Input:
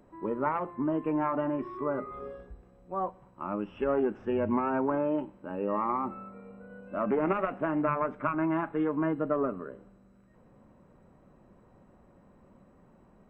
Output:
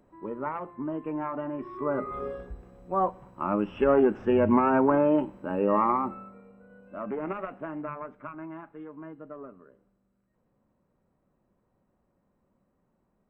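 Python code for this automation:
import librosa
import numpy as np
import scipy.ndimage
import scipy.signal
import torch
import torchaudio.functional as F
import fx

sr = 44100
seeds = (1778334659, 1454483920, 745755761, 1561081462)

y = fx.gain(x, sr, db=fx.line((1.52, -3.5), (2.15, 6.5), (5.83, 6.5), (6.52, -5.5), (7.48, -5.5), (8.8, -14.0)))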